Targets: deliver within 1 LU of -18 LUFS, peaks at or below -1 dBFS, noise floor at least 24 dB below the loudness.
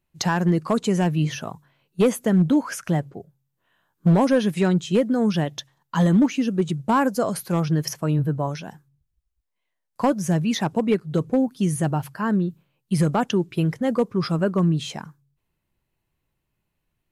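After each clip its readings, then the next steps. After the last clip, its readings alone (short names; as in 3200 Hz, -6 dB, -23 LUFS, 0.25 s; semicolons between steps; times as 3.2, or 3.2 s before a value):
clipped 0.5%; flat tops at -11.5 dBFS; loudness -22.5 LUFS; peak -11.5 dBFS; loudness target -18.0 LUFS
-> clip repair -11.5 dBFS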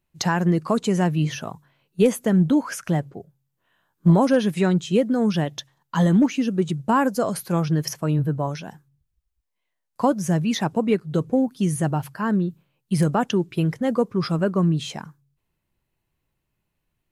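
clipped 0.0%; loudness -22.0 LUFS; peak -6.0 dBFS; loudness target -18.0 LUFS
-> gain +4 dB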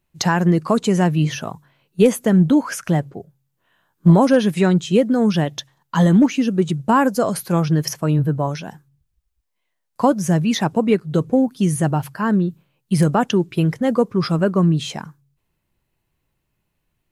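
loudness -18.0 LUFS; peak -2.0 dBFS; noise floor -74 dBFS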